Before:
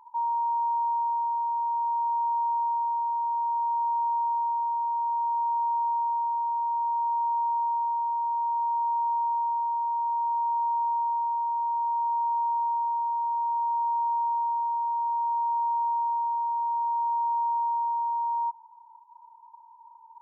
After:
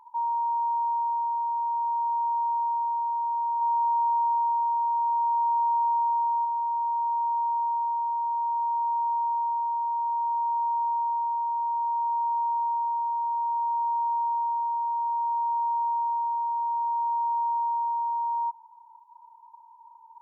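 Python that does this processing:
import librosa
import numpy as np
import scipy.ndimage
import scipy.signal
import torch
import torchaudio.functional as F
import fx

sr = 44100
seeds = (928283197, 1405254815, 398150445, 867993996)

y = fx.comb(x, sr, ms=2.3, depth=0.44, at=(3.61, 6.45))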